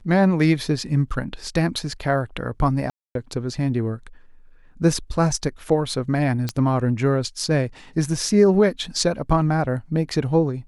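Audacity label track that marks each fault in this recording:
2.900000	3.150000	dropout 252 ms
6.490000	6.490000	pop -11 dBFS

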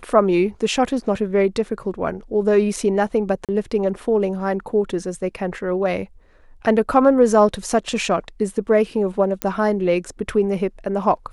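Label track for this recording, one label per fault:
3.450000	3.490000	dropout 37 ms
9.420000	9.420000	pop -6 dBFS

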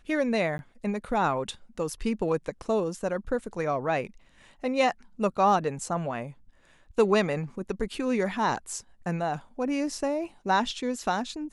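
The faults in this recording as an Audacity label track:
0.580000	0.590000	dropout 11 ms

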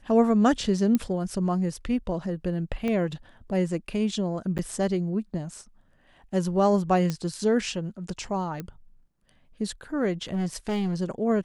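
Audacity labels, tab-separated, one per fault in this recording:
0.950000	0.950000	pop -12 dBFS
2.880000	2.880000	pop -17 dBFS
4.580000	4.590000	dropout 8.5 ms
7.100000	7.100000	pop -15 dBFS
8.600000	8.600000	pop -20 dBFS
10.320000	10.950000	clipped -23.5 dBFS

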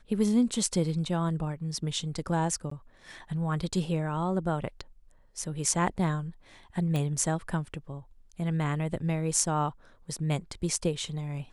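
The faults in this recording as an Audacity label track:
2.700000	2.710000	dropout 14 ms
6.960000	6.960000	pop

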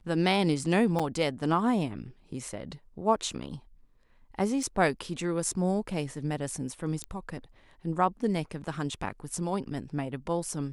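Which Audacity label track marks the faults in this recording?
0.990000	1.000000	dropout 5.9 ms
4.630000	4.630000	dropout 2.8 ms
7.040000	7.040000	pop -20 dBFS

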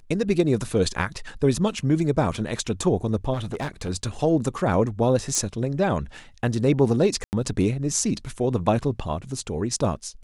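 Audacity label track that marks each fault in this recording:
3.330000	3.890000	clipped -24.5 dBFS
5.350000	5.350000	pop -12 dBFS
7.240000	7.330000	dropout 89 ms

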